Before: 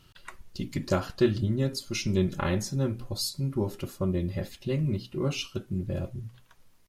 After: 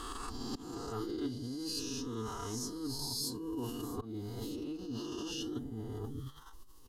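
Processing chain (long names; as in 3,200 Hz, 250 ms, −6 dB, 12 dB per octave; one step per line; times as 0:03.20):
peak hold with a rise ahead of every peak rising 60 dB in 1.49 s
volume swells 276 ms
reversed playback
downward compressor 20 to 1, threshold −37 dBFS, peak gain reduction 22 dB
reversed playback
phaser with its sweep stopped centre 540 Hz, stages 6
phase-vocoder pitch shift with formants kept +3 semitones
level +6 dB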